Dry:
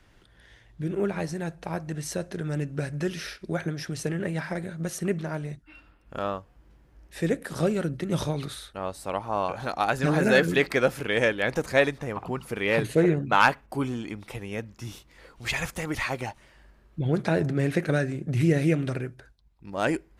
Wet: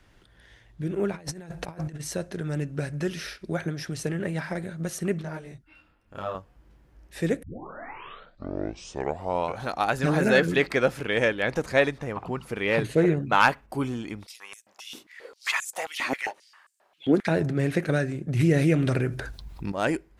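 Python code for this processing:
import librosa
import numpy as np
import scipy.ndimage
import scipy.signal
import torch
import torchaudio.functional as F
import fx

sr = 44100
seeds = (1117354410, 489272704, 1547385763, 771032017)

y = fx.over_compress(x, sr, threshold_db=-38.0, ratio=-0.5, at=(1.14, 1.99), fade=0.02)
y = fx.detune_double(y, sr, cents=19, at=(5.22, 6.35))
y = fx.high_shelf(y, sr, hz=11000.0, db=-10.0, at=(10.29, 13.02))
y = fx.filter_held_highpass(y, sr, hz=7.5, low_hz=270.0, high_hz=7800.0, at=(14.25, 17.26), fade=0.02)
y = fx.env_flatten(y, sr, amount_pct=50, at=(18.39, 19.72))
y = fx.edit(y, sr, fx.tape_start(start_s=7.43, length_s=2.21), tone=tone)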